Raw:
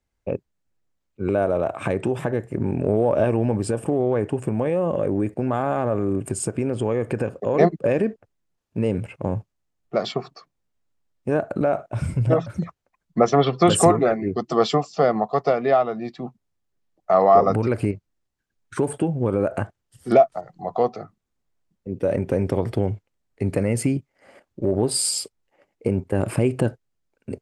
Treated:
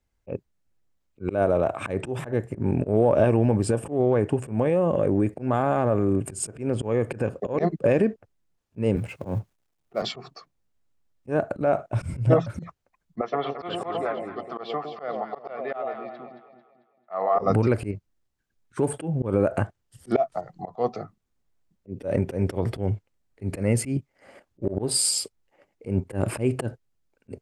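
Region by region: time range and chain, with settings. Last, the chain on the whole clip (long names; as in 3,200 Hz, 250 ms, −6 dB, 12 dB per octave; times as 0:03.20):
0:08.96–0:10.02: mu-law and A-law mismatch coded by mu + low-shelf EQ 67 Hz −8.5 dB + multiband upward and downward expander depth 40%
0:13.21–0:17.39: high-pass filter 1,400 Hz 6 dB per octave + high-frequency loss of the air 420 metres + delay that swaps between a low-pass and a high-pass 111 ms, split 830 Hz, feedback 64%, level −5.5 dB
whole clip: low-shelf EQ 120 Hz +3.5 dB; volume swells 126 ms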